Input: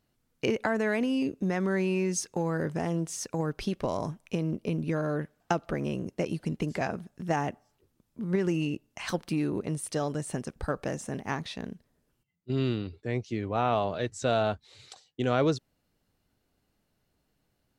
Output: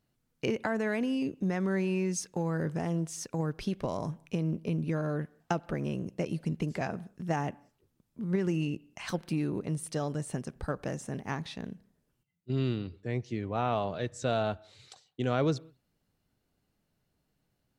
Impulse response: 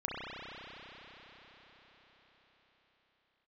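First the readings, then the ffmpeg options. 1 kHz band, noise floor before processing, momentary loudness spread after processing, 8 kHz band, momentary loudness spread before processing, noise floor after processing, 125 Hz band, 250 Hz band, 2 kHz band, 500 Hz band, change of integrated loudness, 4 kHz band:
−3.5 dB, −76 dBFS, 7 LU, −3.5 dB, 8 LU, −78 dBFS, 0.0 dB, −2.0 dB, −3.5 dB, −3.5 dB, −2.5 dB, −3.5 dB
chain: -filter_complex "[0:a]equalizer=frequency=150:width_type=o:width=1:gain=4,asplit=2[link_01][link_02];[1:a]atrim=start_sample=2205,afade=type=out:start_time=0.26:duration=0.01,atrim=end_sample=11907[link_03];[link_02][link_03]afir=irnorm=-1:irlink=0,volume=-26dB[link_04];[link_01][link_04]amix=inputs=2:normalize=0,volume=-4dB"

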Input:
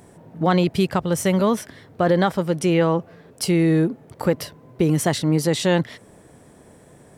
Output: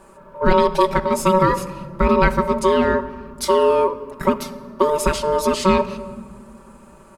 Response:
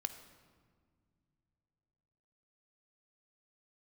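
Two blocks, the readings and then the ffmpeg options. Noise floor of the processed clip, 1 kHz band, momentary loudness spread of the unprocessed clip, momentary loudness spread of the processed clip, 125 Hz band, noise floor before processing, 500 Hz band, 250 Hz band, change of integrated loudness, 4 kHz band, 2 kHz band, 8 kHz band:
−46 dBFS, +8.5 dB, 8 LU, 11 LU, −5.5 dB, −50 dBFS, +4.5 dB, −2.5 dB, +2.0 dB, 0.0 dB, +3.5 dB, −0.5 dB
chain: -filter_complex "[0:a]aeval=exprs='val(0)*sin(2*PI*750*n/s)':channel_layout=same,aecho=1:1:5.2:0.78,asplit=2[link_01][link_02];[1:a]atrim=start_sample=2205,lowshelf=frequency=370:gain=10[link_03];[link_02][link_03]afir=irnorm=-1:irlink=0,volume=4.5dB[link_04];[link_01][link_04]amix=inputs=2:normalize=0,volume=-7.5dB"

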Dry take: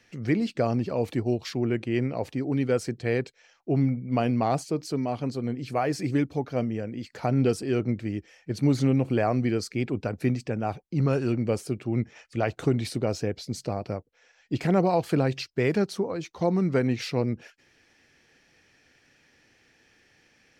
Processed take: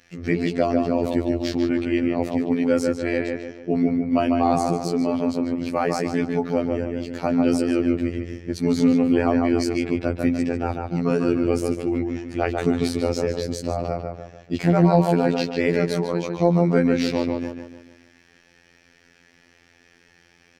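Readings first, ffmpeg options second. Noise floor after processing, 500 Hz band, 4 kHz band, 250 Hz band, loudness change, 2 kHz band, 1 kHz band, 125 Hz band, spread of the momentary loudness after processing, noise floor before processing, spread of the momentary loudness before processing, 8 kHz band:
−57 dBFS, +5.0 dB, +4.0 dB, +6.5 dB, +5.0 dB, +5.0 dB, +5.5 dB, +0.5 dB, 9 LU, −64 dBFS, 8 LU, +4.0 dB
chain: -filter_complex "[0:a]asplit=2[link_01][link_02];[link_02]adelay=147,lowpass=frequency=2600:poles=1,volume=-3.5dB,asplit=2[link_03][link_04];[link_04]adelay=147,lowpass=frequency=2600:poles=1,volume=0.45,asplit=2[link_05][link_06];[link_06]adelay=147,lowpass=frequency=2600:poles=1,volume=0.45,asplit=2[link_07][link_08];[link_08]adelay=147,lowpass=frequency=2600:poles=1,volume=0.45,asplit=2[link_09][link_10];[link_10]adelay=147,lowpass=frequency=2600:poles=1,volume=0.45,asplit=2[link_11][link_12];[link_12]adelay=147,lowpass=frequency=2600:poles=1,volume=0.45[link_13];[link_01][link_03][link_05][link_07][link_09][link_11][link_13]amix=inputs=7:normalize=0,afftfilt=real='hypot(re,im)*cos(PI*b)':imag='0':win_size=2048:overlap=0.75,acontrast=49,volume=1.5dB"

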